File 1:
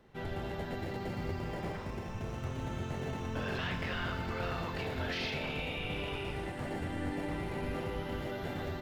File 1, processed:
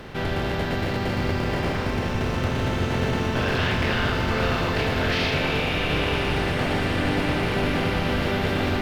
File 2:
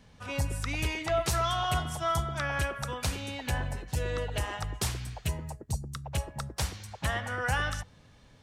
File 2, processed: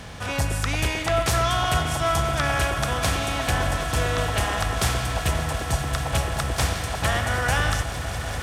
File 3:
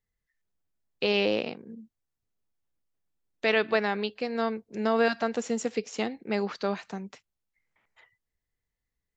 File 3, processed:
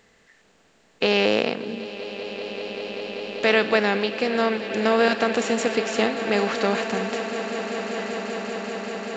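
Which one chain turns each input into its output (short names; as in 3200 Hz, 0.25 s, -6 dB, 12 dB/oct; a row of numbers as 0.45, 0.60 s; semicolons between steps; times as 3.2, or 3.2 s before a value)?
per-bin compression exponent 0.6; swelling echo 0.194 s, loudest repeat 8, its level -16 dB; match loudness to -24 LUFS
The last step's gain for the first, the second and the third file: +9.0, +3.5, +3.0 dB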